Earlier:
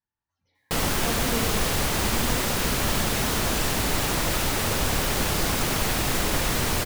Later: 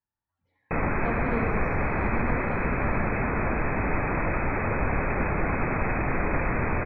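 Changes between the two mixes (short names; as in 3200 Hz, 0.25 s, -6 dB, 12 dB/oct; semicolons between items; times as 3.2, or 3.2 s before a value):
speech: add LPF 2000 Hz 12 dB/oct; background: add brick-wall FIR low-pass 2600 Hz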